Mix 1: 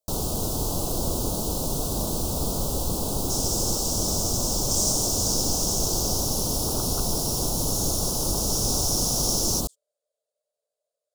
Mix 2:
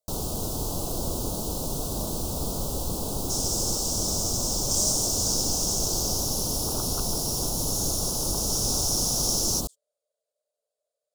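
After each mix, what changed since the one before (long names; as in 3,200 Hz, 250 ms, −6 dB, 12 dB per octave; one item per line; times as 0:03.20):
first sound −3.0 dB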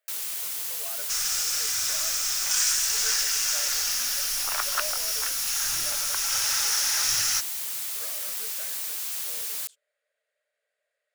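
first sound: add first difference
second sound: entry −2.20 s
master: remove Butterworth band-reject 2,000 Hz, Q 0.51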